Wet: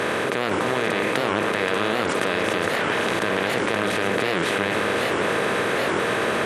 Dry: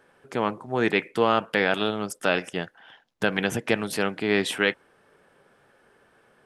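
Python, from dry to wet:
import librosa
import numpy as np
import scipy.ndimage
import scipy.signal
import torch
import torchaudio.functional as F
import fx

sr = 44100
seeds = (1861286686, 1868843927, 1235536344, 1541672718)

p1 = fx.bin_compress(x, sr, power=0.2)
p2 = fx.over_compress(p1, sr, threshold_db=-21.0, ratio=-1.0)
p3 = p1 + F.gain(torch.from_numpy(p2), -2.0).numpy()
p4 = fx.high_shelf(p3, sr, hz=7300.0, db=-5.5)
p5 = fx.level_steps(p4, sr, step_db=24)
p6 = p5 + fx.echo_single(p5, sr, ms=525, db=-5.0, dry=0)
y = fx.record_warp(p6, sr, rpm=78.0, depth_cents=250.0)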